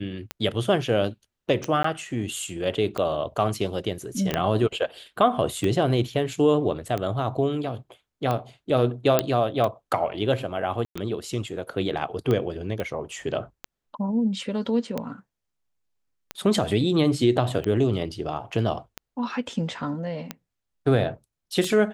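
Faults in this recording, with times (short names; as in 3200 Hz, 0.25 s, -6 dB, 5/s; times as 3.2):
tick 45 rpm -14 dBFS
1.83–1.84 gap 14 ms
4.34 pop -10 dBFS
9.19 pop -4 dBFS
10.85–10.96 gap 0.105 s
12.8 pop -17 dBFS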